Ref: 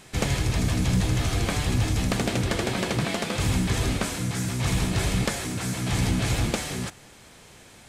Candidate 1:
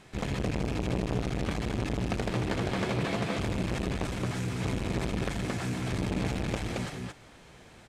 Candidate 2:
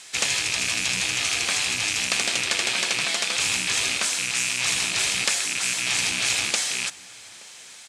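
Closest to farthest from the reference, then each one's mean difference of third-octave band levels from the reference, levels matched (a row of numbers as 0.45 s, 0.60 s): 1, 2; 5.0 dB, 9.0 dB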